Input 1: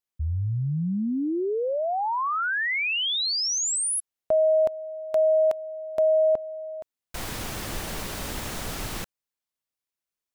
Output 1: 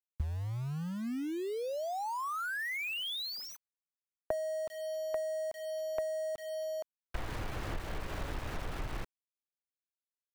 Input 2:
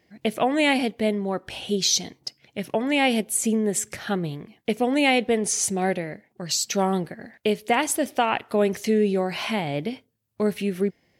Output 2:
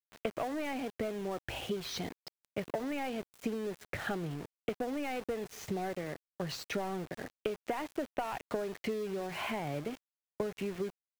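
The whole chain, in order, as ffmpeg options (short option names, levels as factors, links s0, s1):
-filter_complex "[0:a]equalizer=f=210:w=3.3:g=-7,acrossover=split=170[s0][s1];[s1]asoftclip=type=tanh:threshold=0.106[s2];[s0][s2]amix=inputs=2:normalize=0,lowpass=2200,lowshelf=f=77:g=6.5,acompressor=threshold=0.0158:ratio=12:attack=97:release=184:knee=1:detection=rms,aeval=exprs='val(0)*gte(abs(val(0)),0.00708)':c=same"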